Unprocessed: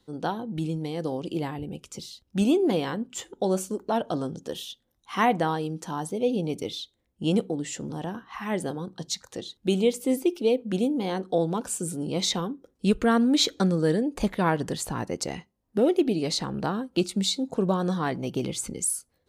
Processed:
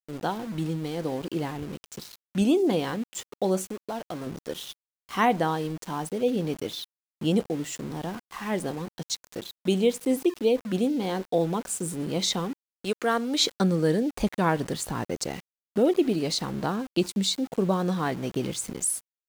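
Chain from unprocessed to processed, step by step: 3.65–4.27 s: compression 2.5:1, threshold -34 dBFS, peak gain reduction 9 dB; 12.53–13.43 s: high-pass 400 Hz 12 dB/octave; small samples zeroed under -38.5 dBFS

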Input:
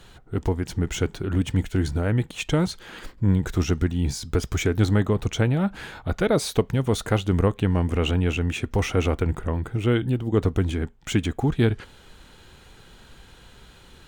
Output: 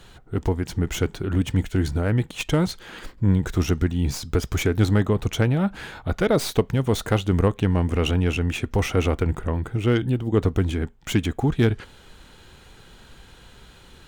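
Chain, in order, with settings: tracing distortion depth 0.046 ms; trim +1 dB

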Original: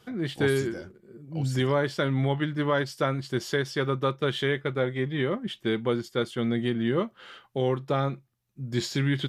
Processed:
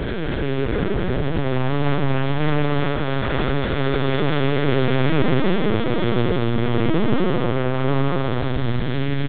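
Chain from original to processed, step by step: spectral blur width 1170 ms; waveshaping leveller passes 5; on a send: delay 919 ms -14.5 dB; on the sum: algorithmic reverb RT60 2.2 s, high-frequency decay 0.3×, pre-delay 90 ms, DRR 5 dB; LPC vocoder at 8 kHz pitch kept

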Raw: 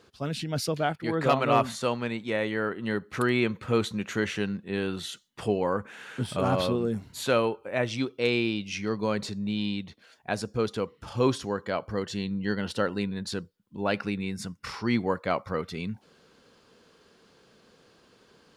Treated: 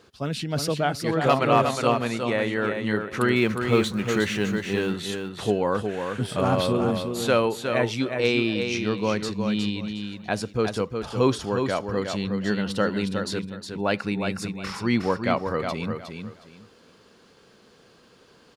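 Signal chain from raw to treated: 3.36–4.93 s: companding laws mixed up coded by mu; on a send: feedback delay 362 ms, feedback 22%, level -6 dB; on the sum: trim +3 dB

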